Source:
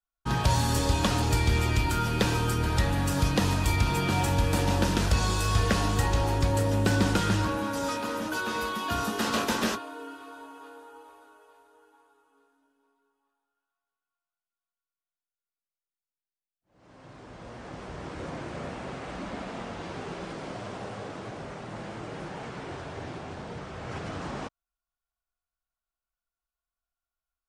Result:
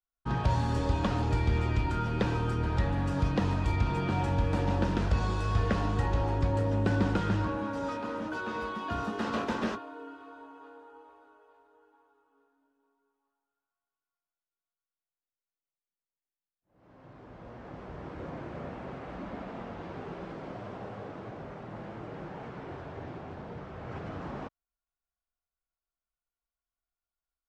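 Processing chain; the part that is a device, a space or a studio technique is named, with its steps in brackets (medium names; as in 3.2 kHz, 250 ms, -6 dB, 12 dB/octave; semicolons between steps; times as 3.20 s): through cloth (low-pass 7.3 kHz 12 dB/octave; treble shelf 3.2 kHz -16 dB); trim -2.5 dB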